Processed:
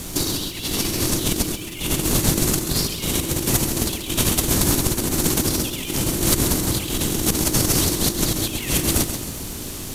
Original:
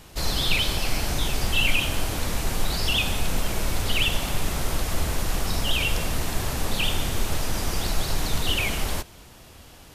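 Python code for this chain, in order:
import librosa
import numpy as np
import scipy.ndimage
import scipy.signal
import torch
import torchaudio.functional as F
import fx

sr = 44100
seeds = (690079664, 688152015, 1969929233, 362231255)

y = fx.octave_divider(x, sr, octaves=2, level_db=2.0)
y = fx.low_shelf(y, sr, hz=91.0, db=-9.0)
y = fx.over_compress(y, sr, threshold_db=-31.0, ratio=-0.5)
y = y * np.sin(2.0 * np.pi * 330.0 * np.arange(len(y)) / sr)
y = fx.dmg_noise_colour(y, sr, seeds[0], colour='pink', level_db=-63.0)
y = fx.bass_treble(y, sr, bass_db=14, treble_db=12)
y = fx.notch(y, sr, hz=5100.0, q=26.0)
y = fx.echo_feedback(y, sr, ms=134, feedback_pct=44, wet_db=-9.0)
y = F.gain(torch.from_numpy(y), 6.0).numpy()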